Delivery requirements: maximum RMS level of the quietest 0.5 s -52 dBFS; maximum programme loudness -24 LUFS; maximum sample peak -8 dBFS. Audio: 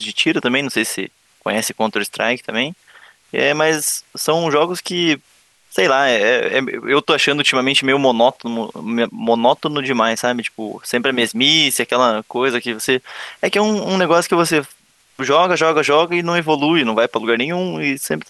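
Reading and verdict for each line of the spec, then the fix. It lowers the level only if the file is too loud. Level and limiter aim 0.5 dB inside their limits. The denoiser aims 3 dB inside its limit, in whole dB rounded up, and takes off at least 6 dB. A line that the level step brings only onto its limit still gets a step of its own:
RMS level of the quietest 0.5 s -55 dBFS: OK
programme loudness -16.5 LUFS: fail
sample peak -2.0 dBFS: fail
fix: gain -8 dB

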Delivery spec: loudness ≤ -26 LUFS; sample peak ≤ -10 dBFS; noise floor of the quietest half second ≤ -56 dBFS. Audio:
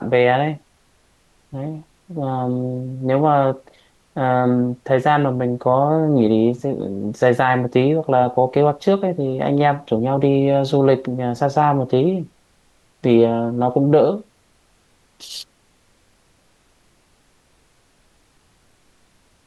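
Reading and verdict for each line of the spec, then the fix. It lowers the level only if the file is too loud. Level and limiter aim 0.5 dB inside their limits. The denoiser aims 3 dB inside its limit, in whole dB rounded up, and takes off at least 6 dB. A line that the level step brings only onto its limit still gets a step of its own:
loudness -18.0 LUFS: fail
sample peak -3.5 dBFS: fail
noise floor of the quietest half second -58 dBFS: OK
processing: gain -8.5 dB

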